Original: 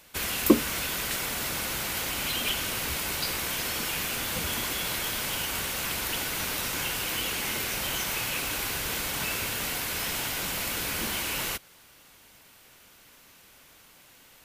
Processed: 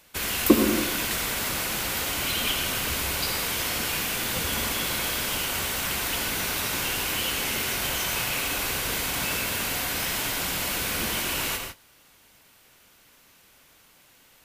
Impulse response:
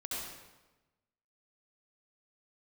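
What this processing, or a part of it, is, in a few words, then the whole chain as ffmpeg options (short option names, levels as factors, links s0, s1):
keyed gated reverb: -filter_complex "[0:a]asplit=3[s0][s1][s2];[1:a]atrim=start_sample=2205[s3];[s1][s3]afir=irnorm=-1:irlink=0[s4];[s2]apad=whole_len=636965[s5];[s4][s5]sidechaingate=range=0.0224:threshold=0.00355:ratio=16:detection=peak,volume=0.891[s6];[s0][s6]amix=inputs=2:normalize=0,volume=0.794"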